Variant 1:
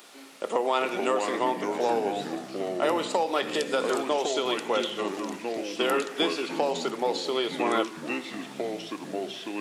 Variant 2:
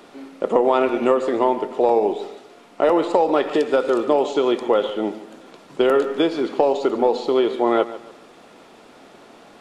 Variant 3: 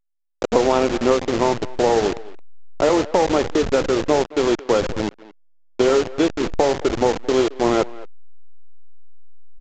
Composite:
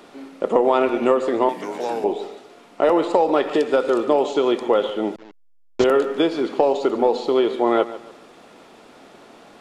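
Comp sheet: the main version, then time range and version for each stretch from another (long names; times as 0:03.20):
2
0:01.49–0:02.04: punch in from 1
0:05.16–0:05.84: punch in from 3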